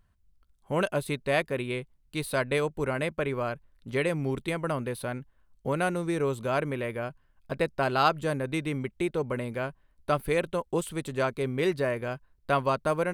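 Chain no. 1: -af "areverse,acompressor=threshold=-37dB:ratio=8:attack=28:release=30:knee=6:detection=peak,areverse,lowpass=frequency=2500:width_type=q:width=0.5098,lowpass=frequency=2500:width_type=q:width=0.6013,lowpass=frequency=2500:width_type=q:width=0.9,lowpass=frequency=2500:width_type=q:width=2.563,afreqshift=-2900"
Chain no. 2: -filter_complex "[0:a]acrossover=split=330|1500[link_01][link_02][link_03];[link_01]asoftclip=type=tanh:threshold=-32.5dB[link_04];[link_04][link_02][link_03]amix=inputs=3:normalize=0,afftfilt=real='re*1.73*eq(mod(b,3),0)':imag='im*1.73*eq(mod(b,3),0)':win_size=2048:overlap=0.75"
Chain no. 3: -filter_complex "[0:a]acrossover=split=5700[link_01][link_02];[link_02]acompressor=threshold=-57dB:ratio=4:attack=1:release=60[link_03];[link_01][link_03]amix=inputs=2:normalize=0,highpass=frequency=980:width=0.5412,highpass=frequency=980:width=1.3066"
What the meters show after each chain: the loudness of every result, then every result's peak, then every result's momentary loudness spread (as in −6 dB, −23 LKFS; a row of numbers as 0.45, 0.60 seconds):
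−34.0, −33.0, −36.0 LKFS; −22.0, −12.5, −12.5 dBFS; 6, 9, 11 LU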